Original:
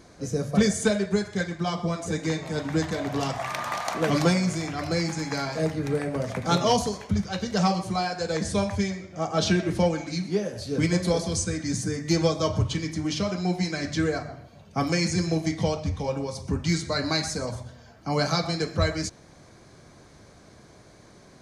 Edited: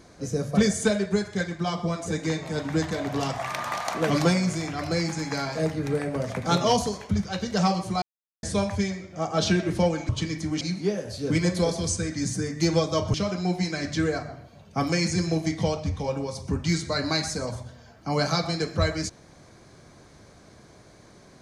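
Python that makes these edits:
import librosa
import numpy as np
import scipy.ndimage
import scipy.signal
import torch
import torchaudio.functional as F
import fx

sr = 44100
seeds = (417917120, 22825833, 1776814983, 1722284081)

y = fx.edit(x, sr, fx.silence(start_s=8.02, length_s=0.41),
    fx.move(start_s=12.62, length_s=0.52, to_s=10.09), tone=tone)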